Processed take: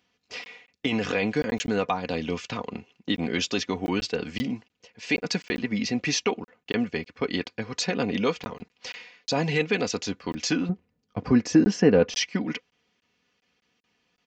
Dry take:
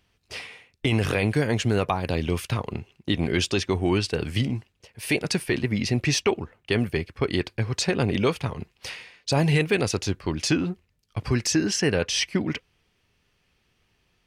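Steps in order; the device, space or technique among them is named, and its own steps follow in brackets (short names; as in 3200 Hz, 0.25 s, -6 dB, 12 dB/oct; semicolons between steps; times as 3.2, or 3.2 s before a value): call with lost packets (HPF 150 Hz 12 dB/oct; downsampling 16000 Hz; packet loss packets of 20 ms random); comb 4.1 ms, depth 54%; 10.69–12.17 tilt shelf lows +9 dB, about 1400 Hz; gain -2.5 dB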